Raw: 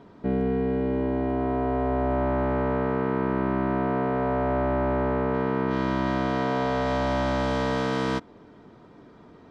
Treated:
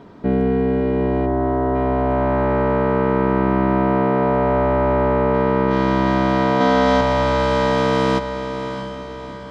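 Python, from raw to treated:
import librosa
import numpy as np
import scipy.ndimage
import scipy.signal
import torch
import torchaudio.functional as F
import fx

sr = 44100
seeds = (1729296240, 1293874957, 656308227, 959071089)

p1 = fx.lowpass(x, sr, hz=1600.0, slope=12, at=(1.25, 1.74), fade=0.02)
p2 = fx.comb(p1, sr, ms=3.9, depth=0.82, at=(6.6, 7.01))
p3 = p2 + fx.echo_diffused(p2, sr, ms=675, feedback_pct=48, wet_db=-9.5, dry=0)
y = p3 * 10.0 ** (7.0 / 20.0)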